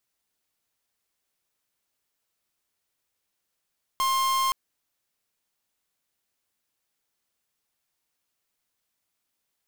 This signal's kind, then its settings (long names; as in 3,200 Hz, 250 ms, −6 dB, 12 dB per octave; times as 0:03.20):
pulse wave 1,060 Hz, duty 45% −24 dBFS 0.52 s